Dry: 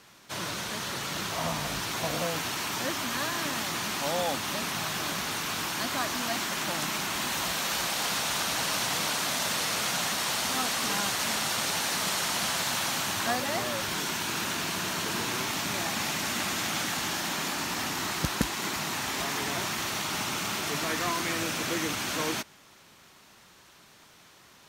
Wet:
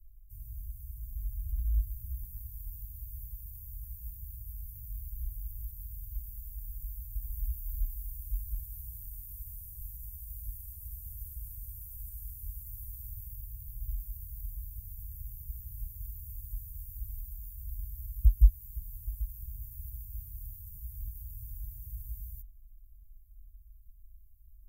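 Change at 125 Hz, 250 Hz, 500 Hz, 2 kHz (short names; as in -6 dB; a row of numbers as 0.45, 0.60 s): +2.0 dB, under -30 dB, under -40 dB, under -40 dB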